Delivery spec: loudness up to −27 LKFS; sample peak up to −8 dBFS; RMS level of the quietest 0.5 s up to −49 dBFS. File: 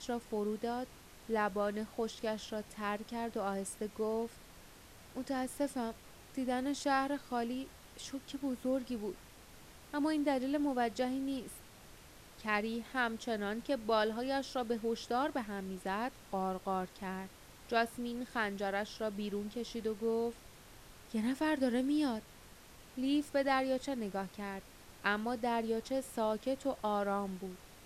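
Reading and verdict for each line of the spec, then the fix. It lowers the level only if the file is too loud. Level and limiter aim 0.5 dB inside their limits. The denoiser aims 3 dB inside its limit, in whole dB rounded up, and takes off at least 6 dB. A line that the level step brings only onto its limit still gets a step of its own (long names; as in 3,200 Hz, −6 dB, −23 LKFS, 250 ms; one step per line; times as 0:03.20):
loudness −36.5 LKFS: in spec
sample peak −17.5 dBFS: in spec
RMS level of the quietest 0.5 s −56 dBFS: in spec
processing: no processing needed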